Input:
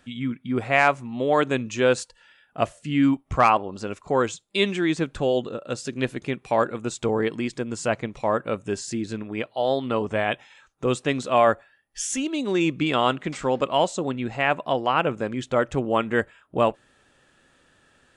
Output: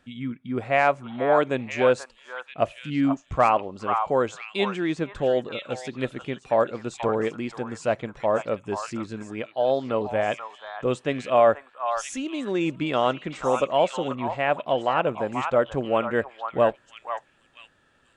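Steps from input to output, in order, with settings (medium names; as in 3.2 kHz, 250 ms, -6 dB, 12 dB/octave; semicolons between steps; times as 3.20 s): treble shelf 5.3 kHz -8 dB; on a send: repeats whose band climbs or falls 485 ms, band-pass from 1.1 kHz, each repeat 1.4 oct, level -2.5 dB; on the sum: dynamic bell 590 Hz, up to +6 dB, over -33 dBFS, Q 2.1; trim -3.5 dB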